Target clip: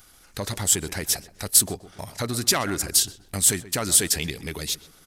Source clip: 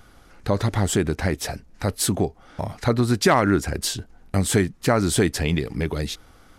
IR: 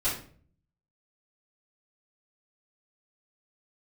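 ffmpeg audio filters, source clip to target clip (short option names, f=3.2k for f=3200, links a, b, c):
-filter_complex "[0:a]atempo=1.3,acontrast=82,crystalizer=i=7:c=0,asplit=2[a][b];[b]adelay=127,lowpass=f=1.8k:p=1,volume=-15dB,asplit=2[c][d];[d]adelay=127,lowpass=f=1.8k:p=1,volume=0.44,asplit=2[e][f];[f]adelay=127,lowpass=f=1.8k:p=1,volume=0.44,asplit=2[g][h];[h]adelay=127,lowpass=f=1.8k:p=1,volume=0.44[i];[c][e][g][i]amix=inputs=4:normalize=0[j];[a][j]amix=inputs=2:normalize=0,volume=-16dB"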